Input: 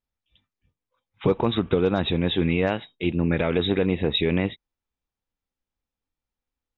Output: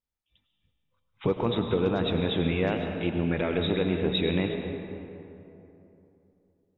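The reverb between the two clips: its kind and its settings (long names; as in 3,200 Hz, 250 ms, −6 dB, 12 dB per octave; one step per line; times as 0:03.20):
comb and all-pass reverb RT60 3.1 s, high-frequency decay 0.45×, pre-delay 65 ms, DRR 4 dB
level −5 dB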